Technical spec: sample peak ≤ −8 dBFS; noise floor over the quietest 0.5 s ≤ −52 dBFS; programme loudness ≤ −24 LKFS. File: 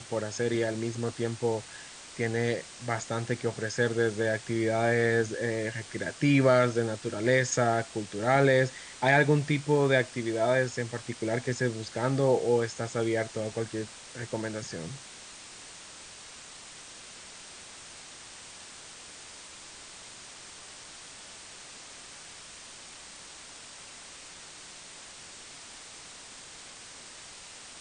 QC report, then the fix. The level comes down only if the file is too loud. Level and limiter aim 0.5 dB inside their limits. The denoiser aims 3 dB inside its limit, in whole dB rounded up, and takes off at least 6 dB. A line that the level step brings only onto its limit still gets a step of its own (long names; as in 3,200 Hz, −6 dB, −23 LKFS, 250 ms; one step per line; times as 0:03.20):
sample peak −9.0 dBFS: in spec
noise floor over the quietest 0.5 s −47 dBFS: out of spec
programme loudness −28.0 LKFS: in spec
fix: broadband denoise 8 dB, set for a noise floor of −47 dBFS